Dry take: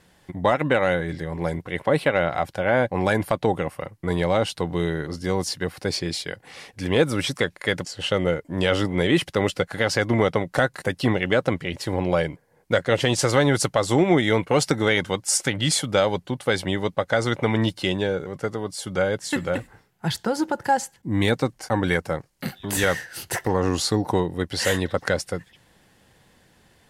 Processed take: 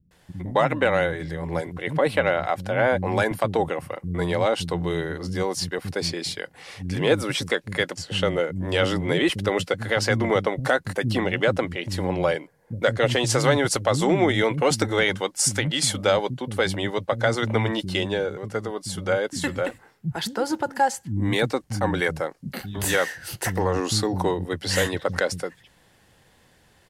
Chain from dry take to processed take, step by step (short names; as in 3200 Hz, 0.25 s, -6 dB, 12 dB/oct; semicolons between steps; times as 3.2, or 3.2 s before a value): bands offset in time lows, highs 0.11 s, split 230 Hz